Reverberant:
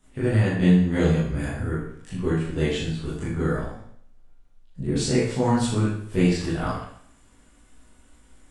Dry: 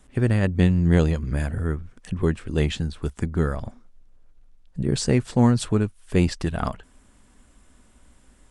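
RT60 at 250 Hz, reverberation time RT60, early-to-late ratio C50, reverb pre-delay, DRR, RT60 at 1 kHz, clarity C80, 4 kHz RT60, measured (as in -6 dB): 0.65 s, 0.65 s, 0.5 dB, 18 ms, -10.5 dB, 0.65 s, 5.0 dB, 0.65 s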